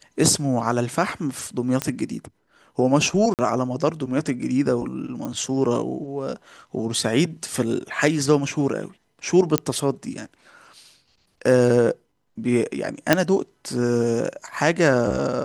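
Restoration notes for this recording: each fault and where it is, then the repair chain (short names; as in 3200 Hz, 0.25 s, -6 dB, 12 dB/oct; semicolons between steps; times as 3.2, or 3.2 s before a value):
1.82 pop -7 dBFS
3.34–3.39 gap 48 ms
5.25 pop -18 dBFS
9.58 pop -3 dBFS
13.13 pop 0 dBFS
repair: de-click; interpolate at 3.34, 48 ms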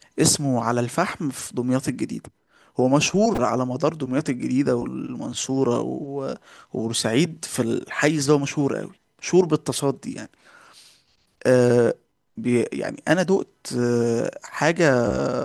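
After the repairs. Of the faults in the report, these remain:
none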